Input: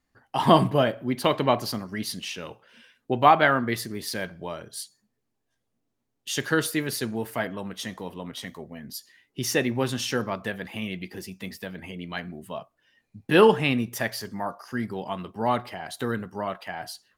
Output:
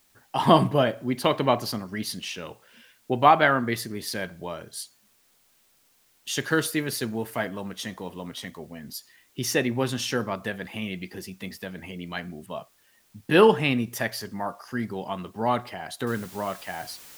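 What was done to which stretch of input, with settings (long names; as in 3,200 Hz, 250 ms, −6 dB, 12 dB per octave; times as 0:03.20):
0:06.30–0:08.55: one scale factor per block 7 bits
0:12.46–0:13.34: low-pass that shuts in the quiet parts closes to 1,600 Hz, open at −35.5 dBFS
0:16.07: noise floor change −64 dB −47 dB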